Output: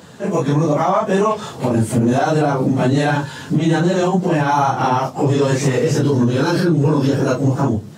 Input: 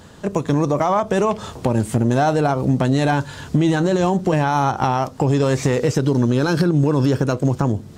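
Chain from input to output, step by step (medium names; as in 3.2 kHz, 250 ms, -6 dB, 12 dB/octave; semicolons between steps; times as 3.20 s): phase randomisation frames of 100 ms; high-pass 110 Hz 24 dB/octave; peak limiter -10.5 dBFS, peak gain reduction 5.5 dB; trim +3.5 dB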